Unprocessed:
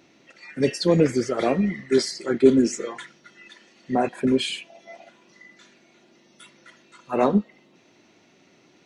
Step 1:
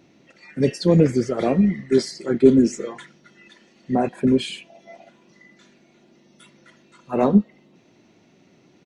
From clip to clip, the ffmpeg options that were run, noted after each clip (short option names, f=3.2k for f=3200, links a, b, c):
-af "firequalizer=gain_entry='entry(190,0);entry(290,-4);entry(1300,-9)':delay=0.05:min_phase=1,volume=6dB"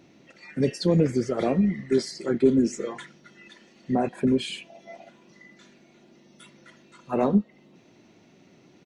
-af "acompressor=threshold=-26dB:ratio=1.5"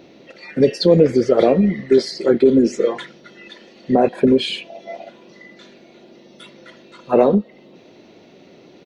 -af "alimiter=limit=-14.5dB:level=0:latency=1:release=96,equalizer=f=125:t=o:w=1:g=-3,equalizer=f=500:t=o:w=1:g=9,equalizer=f=4k:t=o:w=1:g=7,equalizer=f=8k:t=o:w=1:g=-9,volume=6.5dB"